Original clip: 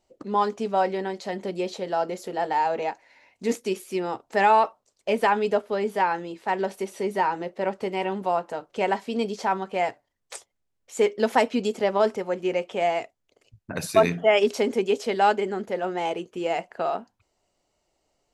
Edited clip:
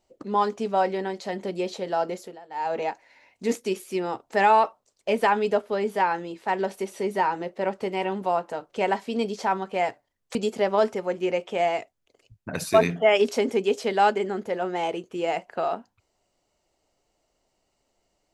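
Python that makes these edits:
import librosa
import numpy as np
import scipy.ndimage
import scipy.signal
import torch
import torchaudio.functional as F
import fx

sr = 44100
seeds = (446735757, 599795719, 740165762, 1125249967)

y = fx.edit(x, sr, fx.fade_down_up(start_s=2.13, length_s=0.63, db=-20.5, fade_s=0.27),
    fx.cut(start_s=10.35, length_s=1.22), tone=tone)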